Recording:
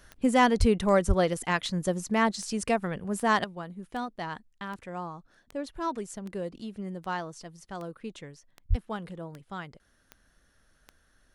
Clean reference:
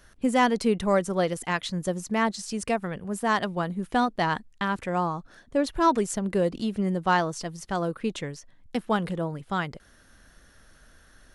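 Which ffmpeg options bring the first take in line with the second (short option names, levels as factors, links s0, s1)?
-filter_complex "[0:a]adeclick=t=4,asplit=3[s0][s1][s2];[s0]afade=t=out:st=0.59:d=0.02[s3];[s1]highpass=f=140:w=0.5412,highpass=f=140:w=1.3066,afade=t=in:st=0.59:d=0.02,afade=t=out:st=0.71:d=0.02[s4];[s2]afade=t=in:st=0.71:d=0.02[s5];[s3][s4][s5]amix=inputs=3:normalize=0,asplit=3[s6][s7][s8];[s6]afade=t=out:st=1.07:d=0.02[s9];[s7]highpass=f=140:w=0.5412,highpass=f=140:w=1.3066,afade=t=in:st=1.07:d=0.02,afade=t=out:st=1.19:d=0.02[s10];[s8]afade=t=in:st=1.19:d=0.02[s11];[s9][s10][s11]amix=inputs=3:normalize=0,asplit=3[s12][s13][s14];[s12]afade=t=out:st=8.69:d=0.02[s15];[s13]highpass=f=140:w=0.5412,highpass=f=140:w=1.3066,afade=t=in:st=8.69:d=0.02,afade=t=out:st=8.81:d=0.02[s16];[s14]afade=t=in:st=8.81:d=0.02[s17];[s15][s16][s17]amix=inputs=3:normalize=0,asetnsamples=n=441:p=0,asendcmd='3.44 volume volume 10.5dB',volume=1"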